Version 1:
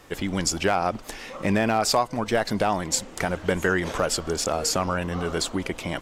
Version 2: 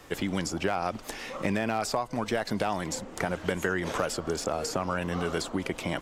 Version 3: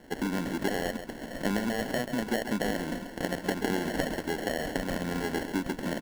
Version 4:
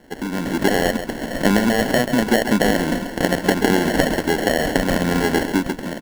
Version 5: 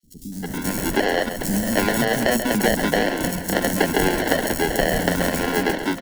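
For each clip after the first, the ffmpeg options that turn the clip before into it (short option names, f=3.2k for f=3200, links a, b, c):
-filter_complex "[0:a]acrossover=split=97|1700[a][b][c];[a]acompressor=threshold=-49dB:ratio=4[d];[b]acompressor=threshold=-26dB:ratio=4[e];[c]acompressor=threshold=-36dB:ratio=4[f];[d][e][f]amix=inputs=3:normalize=0"
-af "acrusher=samples=36:mix=1:aa=0.000001,equalizer=f=100:t=o:w=0.67:g=-10,equalizer=f=250:t=o:w=0.67:g=7,equalizer=f=1.6k:t=o:w=0.67:g=5,aecho=1:1:135:0.335,volume=-3dB"
-af "dynaudnorm=f=140:g=7:m=10dB,volume=3dB"
-filter_complex "[0:a]acrossover=split=310[a][b];[a]acrusher=samples=20:mix=1:aa=0.000001:lfo=1:lforange=12:lforate=1.3[c];[c][b]amix=inputs=2:normalize=0,acrossover=split=240|5300[d][e][f];[d]adelay=30[g];[e]adelay=320[h];[g][h][f]amix=inputs=3:normalize=0,adynamicequalizer=threshold=0.00891:dfrequency=5400:dqfactor=0.7:tfrequency=5400:tqfactor=0.7:attack=5:release=100:ratio=0.375:range=2.5:mode=boostabove:tftype=highshelf,volume=-1dB"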